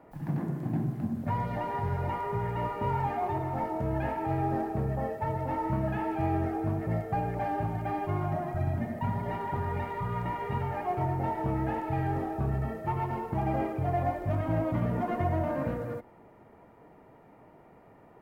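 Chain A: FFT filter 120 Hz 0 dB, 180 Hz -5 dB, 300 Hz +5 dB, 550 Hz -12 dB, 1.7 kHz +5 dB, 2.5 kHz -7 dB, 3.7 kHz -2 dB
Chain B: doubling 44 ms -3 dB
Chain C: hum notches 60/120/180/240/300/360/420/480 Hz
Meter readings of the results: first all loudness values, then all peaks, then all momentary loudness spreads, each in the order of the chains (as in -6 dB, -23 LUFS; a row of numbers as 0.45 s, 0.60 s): -32.5 LUFS, -29.5 LUFS, -32.0 LUFS; -18.0 dBFS, -14.0 dBFS, -16.5 dBFS; 5 LU, 4 LU, 4 LU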